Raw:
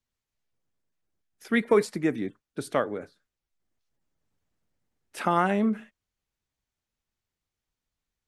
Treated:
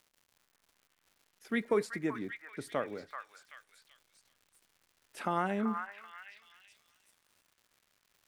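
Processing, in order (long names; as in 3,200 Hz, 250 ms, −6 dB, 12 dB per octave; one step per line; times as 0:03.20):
surface crackle 200 per second −45 dBFS
echo through a band-pass that steps 383 ms, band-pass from 1,400 Hz, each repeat 0.7 octaves, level −3 dB
level −8.5 dB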